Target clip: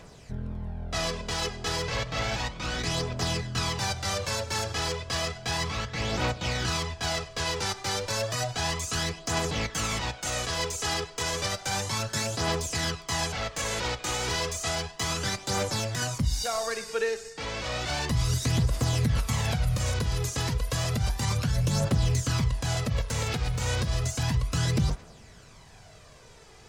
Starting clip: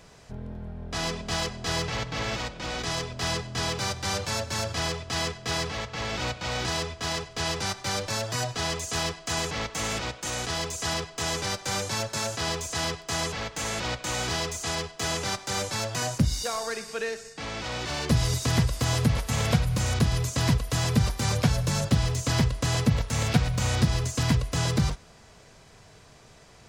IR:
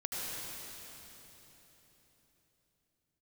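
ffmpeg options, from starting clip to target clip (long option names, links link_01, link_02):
-af "alimiter=limit=-19.5dB:level=0:latency=1:release=111,aphaser=in_gain=1:out_gain=1:delay=2.5:decay=0.43:speed=0.32:type=triangular"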